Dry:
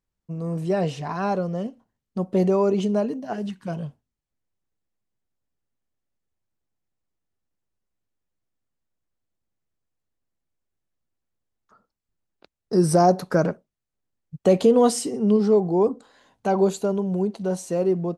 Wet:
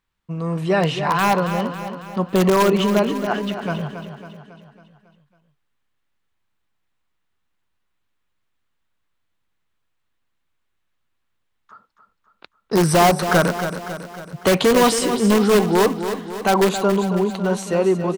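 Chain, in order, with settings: band shelf 1900 Hz +9.5 dB 2.4 oct; in parallel at -5 dB: wrapped overs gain 12.5 dB; on the sum: feedback echo 0.275 s, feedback 53%, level -9.5 dB

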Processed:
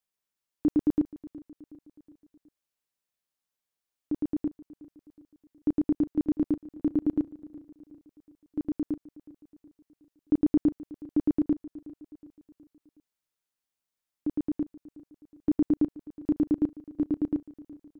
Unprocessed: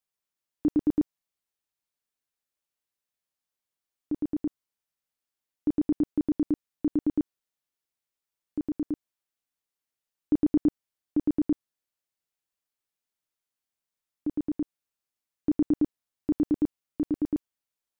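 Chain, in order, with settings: feedback echo 0.368 s, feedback 52%, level -19 dB

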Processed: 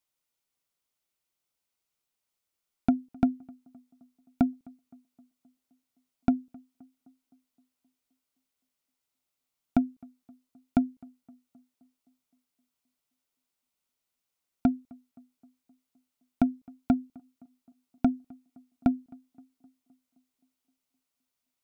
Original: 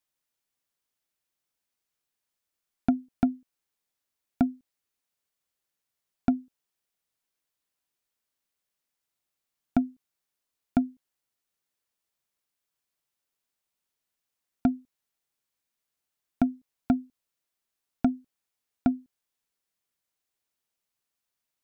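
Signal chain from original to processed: notch 1700 Hz, Q 8; on a send: tape echo 0.26 s, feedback 66%, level -23 dB, low-pass 1200 Hz

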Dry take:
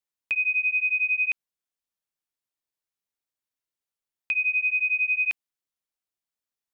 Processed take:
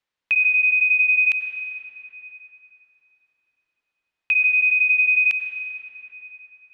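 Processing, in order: low-pass opened by the level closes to 2400 Hz, open at -24 dBFS; high shelf 2100 Hz +11.5 dB; limiter -21.5 dBFS, peak gain reduction 10 dB; on a send: reverb RT60 4.0 s, pre-delay 83 ms, DRR 4.5 dB; on the sum: gain +8 dB

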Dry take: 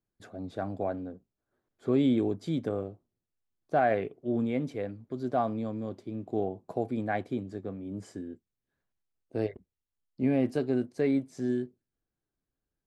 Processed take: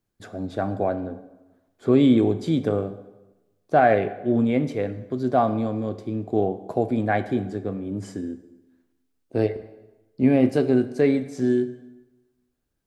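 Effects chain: plate-style reverb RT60 1.1 s, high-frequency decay 0.8×, DRR 11 dB; gain +8 dB

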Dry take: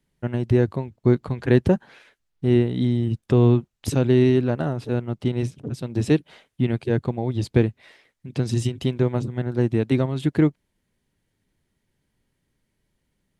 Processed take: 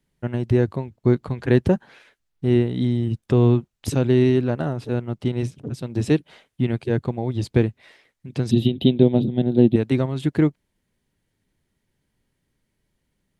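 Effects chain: 8.51–9.76 EQ curve 110 Hz 0 dB, 210 Hz +11 dB, 420 Hz +5 dB, 730 Hz +4 dB, 1200 Hz -14 dB, 2100 Hz -6 dB, 3700 Hz +12 dB, 5500 Hz -21 dB, 8800 Hz -21 dB, 12000 Hz +2 dB

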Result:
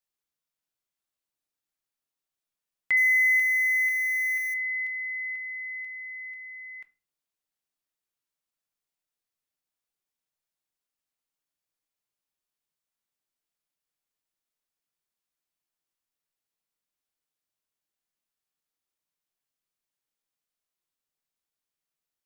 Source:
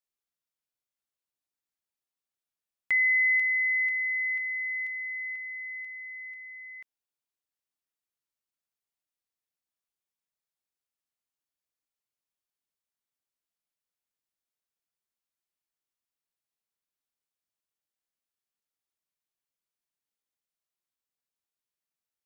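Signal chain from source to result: 2.97–4.54 switching spikes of -35 dBFS; shoebox room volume 220 m³, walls furnished, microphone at 0.5 m; gain +1.5 dB

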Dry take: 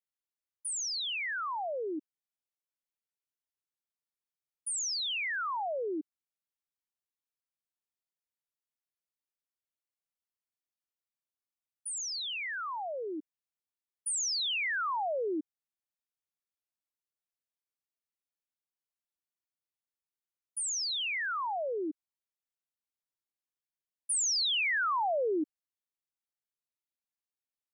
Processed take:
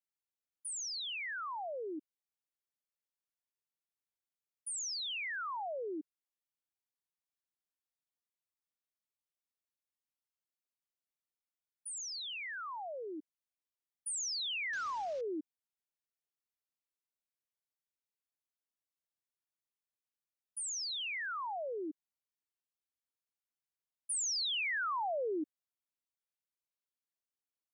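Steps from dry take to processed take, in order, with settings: 14.73–15.21 CVSD 32 kbps; gain -5.5 dB

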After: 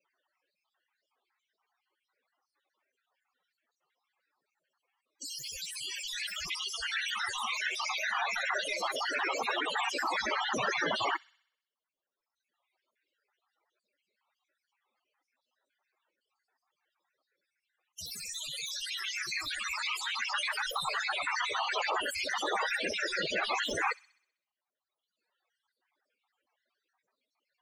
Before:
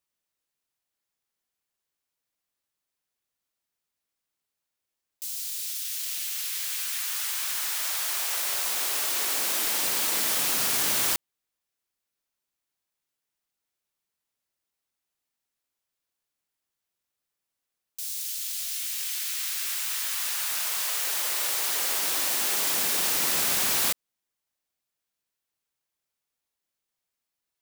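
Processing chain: random spectral dropouts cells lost 55%; reverb removal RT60 1.3 s; in parallel at +2 dB: limiter -24.5 dBFS, peak gain reduction 7.5 dB; on the sum: wow and flutter 60 cents; overdrive pedal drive 19 dB, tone 1400 Hz, clips at -12.5 dBFS; loudest bins only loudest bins 32; on a send: thin delay 64 ms, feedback 54%, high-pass 3500 Hz, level -15.5 dB; on the sum: gain +1 dB

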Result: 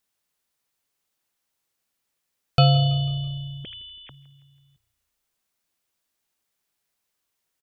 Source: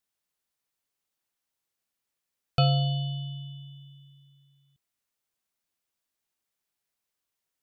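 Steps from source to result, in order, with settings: 3.64–4.1 sine-wave speech; frequency-shifting echo 0.164 s, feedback 50%, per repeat -30 Hz, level -21.5 dB; gain +6 dB

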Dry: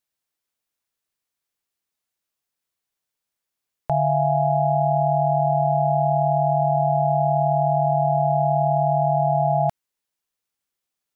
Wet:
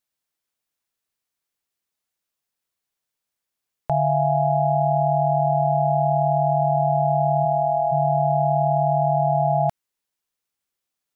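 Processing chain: 7.44–7.91 HPF 140 Hz -> 400 Hz 12 dB/oct

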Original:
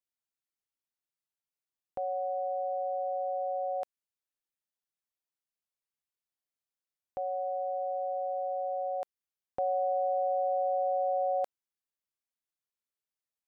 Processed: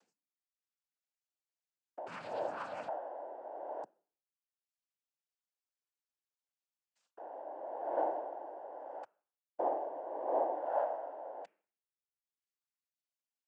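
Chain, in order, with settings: 2.06–2.88 minimum comb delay 0.55 ms; upward compressor, threshold -53 dBFS; gate with hold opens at -60 dBFS; reverb removal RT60 1.2 s; limiter -31 dBFS, peak gain reduction 8 dB; phaser 0.25 Hz, delay 2.2 ms, feedback 78%; steep high-pass 170 Hz; de-hum 233.4 Hz, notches 8; noise vocoder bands 8; dynamic EQ 610 Hz, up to +6 dB, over -59 dBFS, Q 1.9; gain -7.5 dB

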